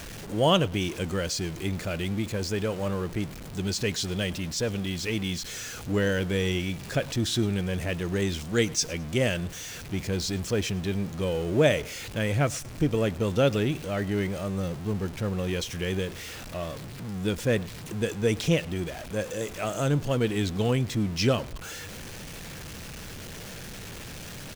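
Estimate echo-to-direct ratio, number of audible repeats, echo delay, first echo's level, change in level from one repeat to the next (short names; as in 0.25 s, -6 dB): -23.0 dB, 2, 0.107 s, -23.5 dB, -9.5 dB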